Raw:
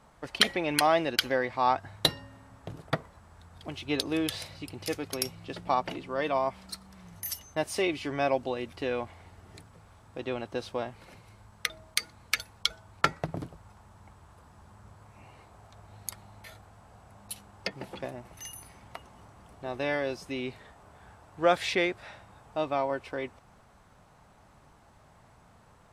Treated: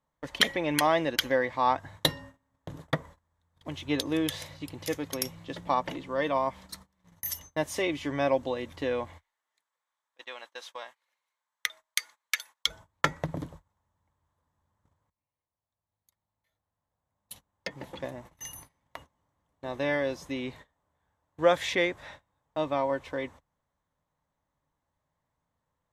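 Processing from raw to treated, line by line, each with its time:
0:09.18–0:12.66: high-pass filter 1,100 Hz
0:15.10–0:18.14: fade in quadratic, from −17.5 dB
whole clip: dynamic equaliser 4,100 Hz, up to −4 dB, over −49 dBFS, Q 3.4; noise gate −47 dBFS, range −24 dB; EQ curve with evenly spaced ripples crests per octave 1.1, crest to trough 6 dB

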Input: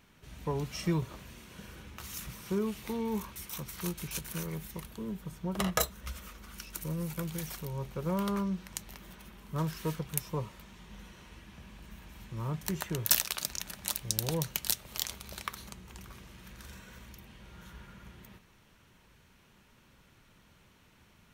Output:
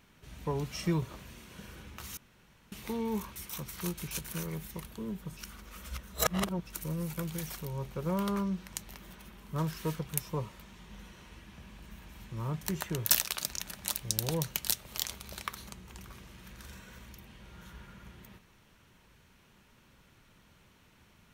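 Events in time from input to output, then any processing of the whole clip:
0:02.17–0:02.72: fill with room tone
0:05.37–0:06.67: reverse

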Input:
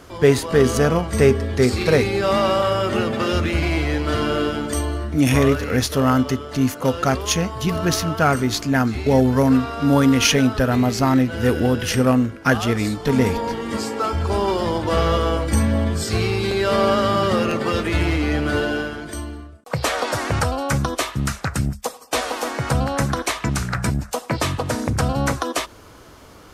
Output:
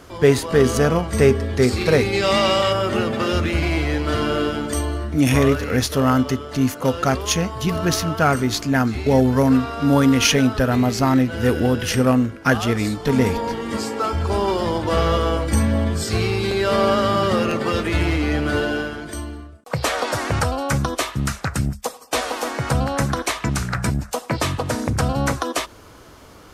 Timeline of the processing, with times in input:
0:02.13–0:02.72: gain on a spectral selection 1,800–8,800 Hz +7 dB

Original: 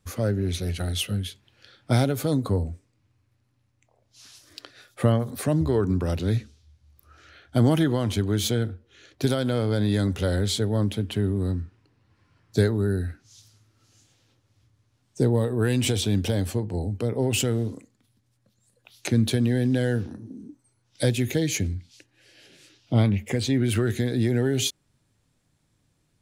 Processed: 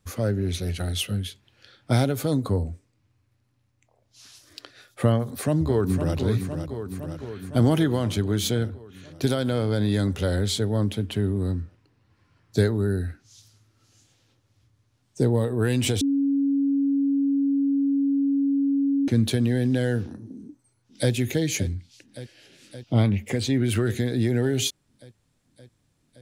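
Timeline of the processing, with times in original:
0:05.17–0:06.15: delay throw 510 ms, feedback 70%, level −7.5 dB
0:16.01–0:19.08: beep over 278 Hz −19 dBFS
0:20.32–0:21.12: delay throw 570 ms, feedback 80%, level −14.5 dB

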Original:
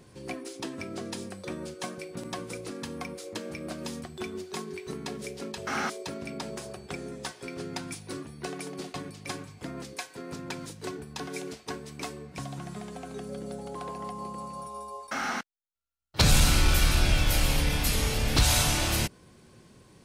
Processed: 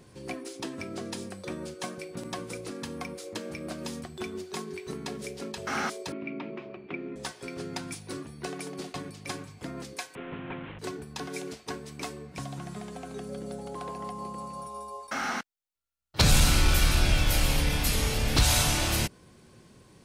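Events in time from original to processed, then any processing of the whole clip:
0:06.12–0:07.16: loudspeaker in its box 180–2,700 Hz, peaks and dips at 310 Hz +10 dB, 480 Hz −6 dB, 790 Hz −7 dB, 1,600 Hz −7 dB, 2,400 Hz +6 dB
0:10.15–0:10.79: linear delta modulator 16 kbit/s, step −37 dBFS

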